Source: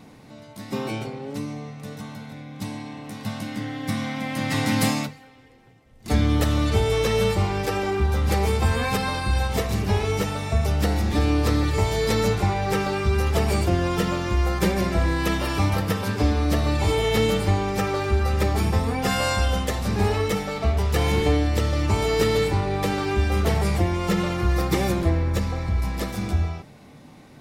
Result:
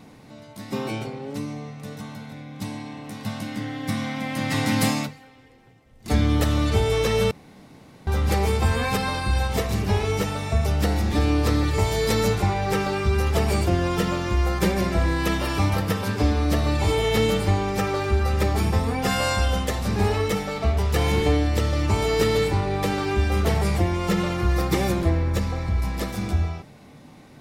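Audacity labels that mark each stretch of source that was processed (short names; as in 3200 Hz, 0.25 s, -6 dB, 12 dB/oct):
7.310000	8.070000	room tone
11.790000	12.420000	high shelf 7700 Hz +4.5 dB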